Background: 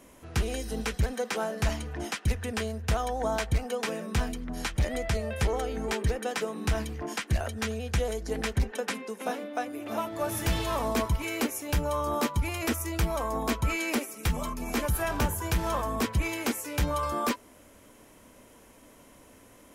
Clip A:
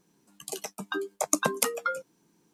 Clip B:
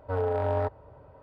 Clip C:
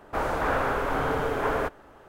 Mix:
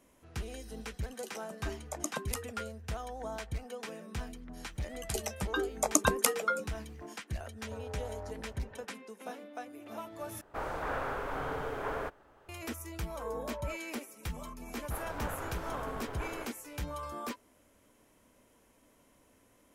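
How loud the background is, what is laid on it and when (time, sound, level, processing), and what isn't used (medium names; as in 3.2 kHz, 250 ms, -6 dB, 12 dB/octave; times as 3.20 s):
background -11 dB
0.71 s: add A -11.5 dB
4.62 s: add A -1 dB
7.63 s: add B -2.5 dB + compression, threshold -39 dBFS
10.41 s: replace with C -9.5 dB + peaking EQ 240 Hz -2.5 dB
13.08 s: add B -14.5 dB + formants replaced by sine waves
14.77 s: add C -12.5 dB + partial rectifier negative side -7 dB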